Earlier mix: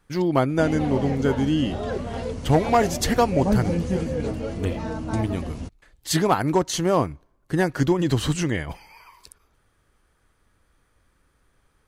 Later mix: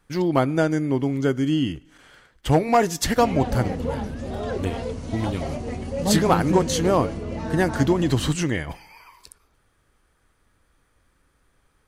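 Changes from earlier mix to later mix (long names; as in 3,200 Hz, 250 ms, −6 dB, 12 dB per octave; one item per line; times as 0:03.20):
speech: send +10.5 dB
background: entry +2.60 s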